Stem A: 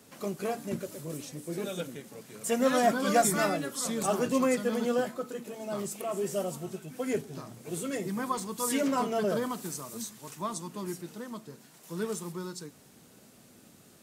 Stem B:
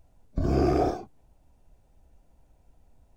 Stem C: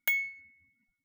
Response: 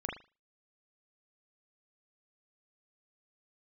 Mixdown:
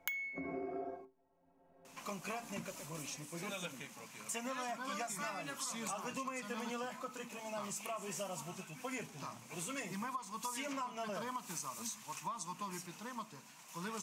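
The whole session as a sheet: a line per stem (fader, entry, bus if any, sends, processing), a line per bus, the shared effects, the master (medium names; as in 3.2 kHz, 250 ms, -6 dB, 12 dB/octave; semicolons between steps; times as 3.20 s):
-6.5 dB, 1.85 s, bus A, no send, none
-3.5 dB, 0.00 s, no bus, send -23 dB, three-band isolator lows -24 dB, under 200 Hz, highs -23 dB, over 2.3 kHz; inharmonic resonator 80 Hz, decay 0.34 s, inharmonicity 0.03; three bands compressed up and down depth 70%
-0.5 dB, 0.00 s, bus A, send -15 dB, none
bus A: 0.0 dB, fifteen-band graphic EQ 100 Hz -5 dB, 400 Hz -9 dB, 1 kHz +12 dB, 2.5 kHz +11 dB, 6.3 kHz +8 dB; compression 2:1, threshold -35 dBFS, peak gain reduction 10 dB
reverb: on, pre-delay 38 ms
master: compression 6:1, threshold -38 dBFS, peak gain reduction 12.5 dB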